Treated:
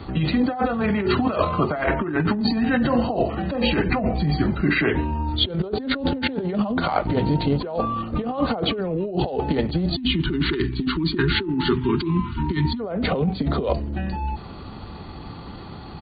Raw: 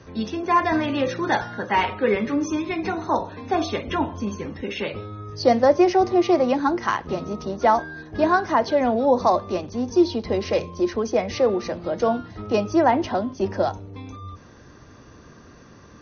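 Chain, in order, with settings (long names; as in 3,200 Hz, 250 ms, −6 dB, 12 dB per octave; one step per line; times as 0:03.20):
pitch shifter −5.5 semitones
time-frequency box erased 0:09.95–0:12.80, 410–840 Hz
compressor whose output falls as the input rises −28 dBFS, ratio −1
level +5.5 dB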